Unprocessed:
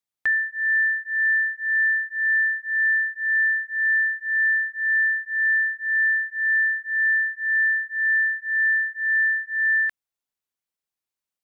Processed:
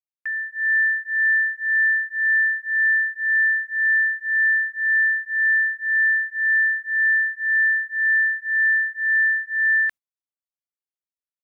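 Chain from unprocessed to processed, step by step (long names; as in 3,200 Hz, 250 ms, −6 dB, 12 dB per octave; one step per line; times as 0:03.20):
noise gate −35 dBFS, range −19 dB
automatic gain control gain up to 9.5 dB
level −7.5 dB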